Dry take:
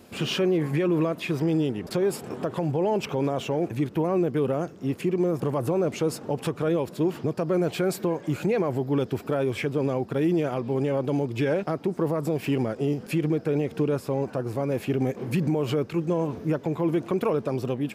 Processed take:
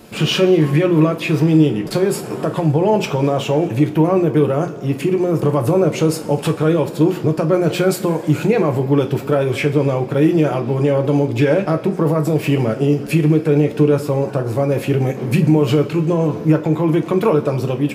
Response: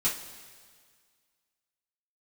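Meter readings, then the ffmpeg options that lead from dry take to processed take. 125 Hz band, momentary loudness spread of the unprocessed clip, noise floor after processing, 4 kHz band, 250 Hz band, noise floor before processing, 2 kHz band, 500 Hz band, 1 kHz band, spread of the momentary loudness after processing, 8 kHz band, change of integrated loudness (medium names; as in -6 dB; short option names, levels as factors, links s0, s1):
+11.5 dB, 4 LU, -29 dBFS, +10.0 dB, +10.0 dB, -44 dBFS, +9.5 dB, +9.0 dB, +9.0 dB, 4 LU, +9.5 dB, +10.0 dB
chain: -filter_complex "[0:a]lowshelf=f=160:g=-3,asplit=2[s0][s1];[1:a]atrim=start_sample=2205,lowshelf=f=83:g=11[s2];[s1][s2]afir=irnorm=-1:irlink=0,volume=0.335[s3];[s0][s3]amix=inputs=2:normalize=0,volume=2"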